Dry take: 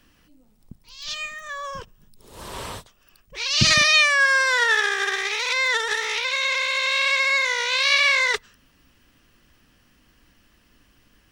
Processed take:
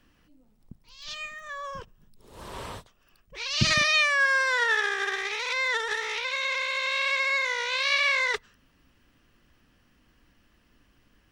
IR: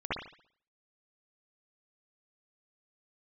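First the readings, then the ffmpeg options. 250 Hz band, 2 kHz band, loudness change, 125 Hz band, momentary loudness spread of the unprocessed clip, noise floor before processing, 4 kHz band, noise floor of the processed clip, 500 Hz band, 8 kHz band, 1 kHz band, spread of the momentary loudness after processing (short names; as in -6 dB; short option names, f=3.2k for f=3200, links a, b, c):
-3.5 dB, -5.0 dB, -6.0 dB, -3.5 dB, 19 LU, -60 dBFS, -7.0 dB, -65 dBFS, -3.5 dB, -9.0 dB, -4.0 dB, 19 LU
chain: -af "highshelf=f=3.6k:g=-7,volume=-3.5dB"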